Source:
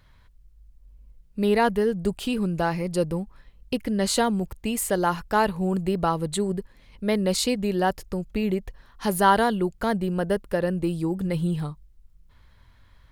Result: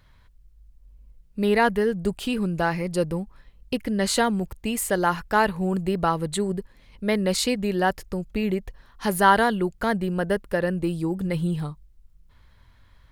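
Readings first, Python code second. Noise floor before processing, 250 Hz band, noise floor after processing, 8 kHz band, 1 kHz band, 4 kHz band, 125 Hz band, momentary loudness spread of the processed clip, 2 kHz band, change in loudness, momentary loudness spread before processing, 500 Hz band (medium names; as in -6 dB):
-56 dBFS, 0.0 dB, -56 dBFS, 0.0 dB, +1.0 dB, +1.0 dB, 0.0 dB, 10 LU, +4.0 dB, +0.5 dB, 9 LU, 0.0 dB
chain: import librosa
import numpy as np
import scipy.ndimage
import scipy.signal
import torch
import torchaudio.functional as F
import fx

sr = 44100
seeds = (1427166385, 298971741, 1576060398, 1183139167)

y = fx.dynamic_eq(x, sr, hz=1800.0, q=1.5, threshold_db=-42.0, ratio=4.0, max_db=5)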